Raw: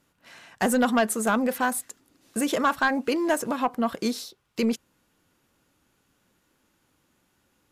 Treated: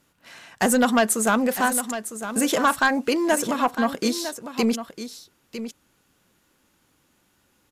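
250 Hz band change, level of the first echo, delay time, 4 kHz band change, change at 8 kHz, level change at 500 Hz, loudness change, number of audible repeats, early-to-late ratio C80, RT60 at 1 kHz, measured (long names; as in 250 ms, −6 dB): +3.0 dB, −11.0 dB, 955 ms, +5.5 dB, +7.0 dB, +3.0 dB, +3.5 dB, 1, no reverb audible, no reverb audible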